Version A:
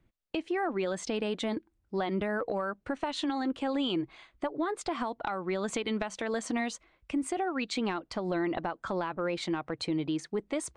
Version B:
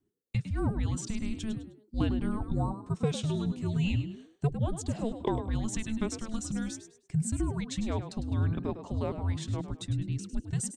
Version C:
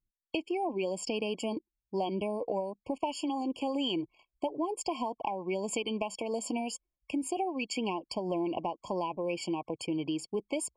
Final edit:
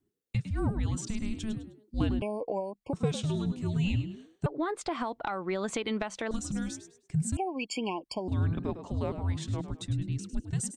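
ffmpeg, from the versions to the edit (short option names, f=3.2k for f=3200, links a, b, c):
-filter_complex "[2:a]asplit=2[a][b];[1:a]asplit=4[c][d][e][f];[c]atrim=end=2.222[g];[a]atrim=start=2.218:end=2.932[h];[d]atrim=start=2.928:end=4.462[i];[0:a]atrim=start=4.458:end=6.312[j];[e]atrim=start=6.308:end=7.372[k];[b]atrim=start=7.368:end=8.282[l];[f]atrim=start=8.278[m];[g][h]acrossfade=d=0.004:c1=hsin:c2=hsin[n];[n][i]acrossfade=d=0.004:c1=hsin:c2=hsin[o];[o][j]acrossfade=d=0.004:c1=hsin:c2=hsin[p];[p][k]acrossfade=d=0.004:c1=hsin:c2=hsin[q];[q][l]acrossfade=d=0.004:c1=hsin:c2=hsin[r];[r][m]acrossfade=d=0.004:c1=hsin:c2=hsin"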